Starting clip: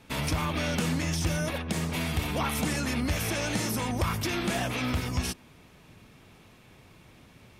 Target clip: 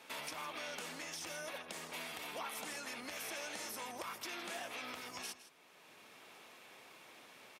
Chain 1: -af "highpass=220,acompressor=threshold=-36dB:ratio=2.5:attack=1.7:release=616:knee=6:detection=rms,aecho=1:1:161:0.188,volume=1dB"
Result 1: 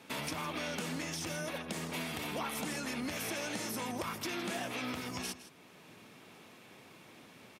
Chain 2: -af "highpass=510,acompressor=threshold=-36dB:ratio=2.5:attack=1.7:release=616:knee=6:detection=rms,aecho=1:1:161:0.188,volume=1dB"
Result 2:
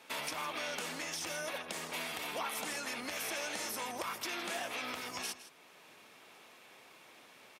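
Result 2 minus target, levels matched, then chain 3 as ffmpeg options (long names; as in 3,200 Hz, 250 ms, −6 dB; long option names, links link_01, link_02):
downward compressor: peak gain reduction −5.5 dB
-af "highpass=510,acompressor=threshold=-45dB:ratio=2.5:attack=1.7:release=616:knee=6:detection=rms,aecho=1:1:161:0.188,volume=1dB"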